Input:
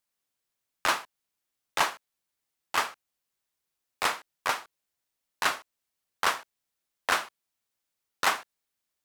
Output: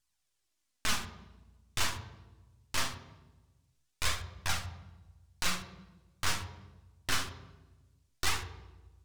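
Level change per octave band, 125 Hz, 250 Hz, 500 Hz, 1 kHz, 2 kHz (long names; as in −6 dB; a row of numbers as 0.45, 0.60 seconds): +15.0, +1.0, −9.5, −10.5, −6.5 decibels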